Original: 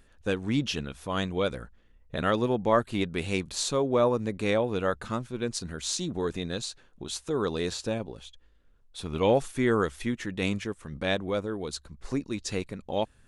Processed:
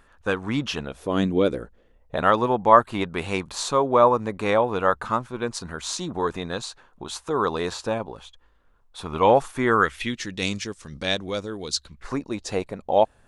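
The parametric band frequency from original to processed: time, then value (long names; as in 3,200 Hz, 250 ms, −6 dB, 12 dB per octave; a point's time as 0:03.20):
parametric band +13.5 dB 1.4 octaves
0:00.73 1,100 Hz
0:01.24 240 Hz
0:02.32 1,000 Hz
0:09.67 1,000 Hz
0:10.24 5,300 Hz
0:11.76 5,300 Hz
0:12.25 720 Hz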